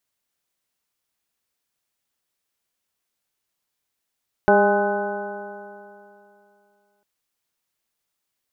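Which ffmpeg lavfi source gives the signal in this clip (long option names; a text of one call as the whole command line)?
ffmpeg -f lavfi -i "aevalsrc='0.0891*pow(10,-3*t/2.69)*sin(2*PI*201.26*t)+0.158*pow(10,-3*t/2.69)*sin(2*PI*404.08*t)+0.158*pow(10,-3*t/2.69)*sin(2*PI*610.01*t)+0.158*pow(10,-3*t/2.69)*sin(2*PI*820.55*t)+0.0398*pow(10,-3*t/2.69)*sin(2*PI*1037.15*t)+0.0251*pow(10,-3*t/2.69)*sin(2*PI*1261.18*t)+0.1*pow(10,-3*t/2.69)*sin(2*PI*1493.94*t)':duration=2.55:sample_rate=44100" out.wav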